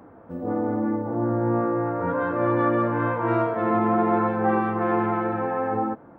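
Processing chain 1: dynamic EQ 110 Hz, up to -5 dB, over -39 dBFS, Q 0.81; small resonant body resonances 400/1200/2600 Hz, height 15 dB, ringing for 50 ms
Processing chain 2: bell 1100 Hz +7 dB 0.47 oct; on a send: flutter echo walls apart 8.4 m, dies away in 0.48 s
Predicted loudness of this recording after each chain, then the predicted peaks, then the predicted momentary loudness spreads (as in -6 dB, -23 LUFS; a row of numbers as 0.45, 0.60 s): -19.5, -20.5 LUFS; -5.0, -7.0 dBFS; 7, 6 LU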